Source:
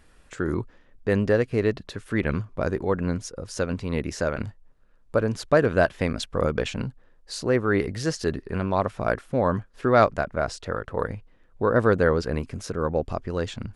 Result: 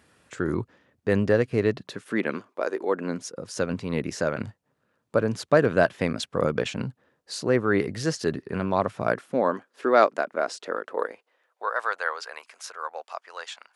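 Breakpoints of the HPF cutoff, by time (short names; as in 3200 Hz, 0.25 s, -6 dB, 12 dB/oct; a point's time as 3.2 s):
HPF 24 dB/oct
1.63 s 91 Hz
2.67 s 370 Hz
3.59 s 110 Hz
9.05 s 110 Hz
9.57 s 270 Hz
10.81 s 270 Hz
11.77 s 780 Hz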